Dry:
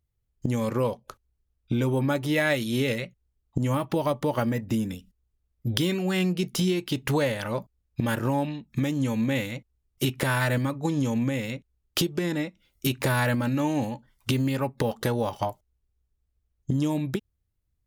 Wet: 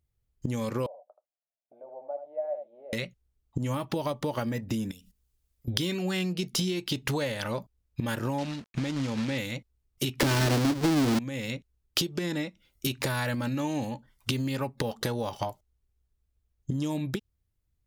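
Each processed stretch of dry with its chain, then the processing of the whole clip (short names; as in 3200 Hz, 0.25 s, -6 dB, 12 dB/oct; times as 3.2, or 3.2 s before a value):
0.86–2.93 Butterworth band-pass 660 Hz, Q 4.5 + echo 79 ms -9 dB
4.91–5.68 high shelf 2900 Hz +11.5 dB + compressor 4:1, threshold -49 dBFS + notches 50/100/150/200/250 Hz
8.38–9.38 companded quantiser 4-bit + air absorption 75 m
10.2–11.19 half-waves squared off + bell 300 Hz +10.5 dB 0.84 oct + sample leveller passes 2
whole clip: compressor 3:1, threshold -28 dBFS; dynamic EQ 4700 Hz, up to +6 dB, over -53 dBFS, Q 1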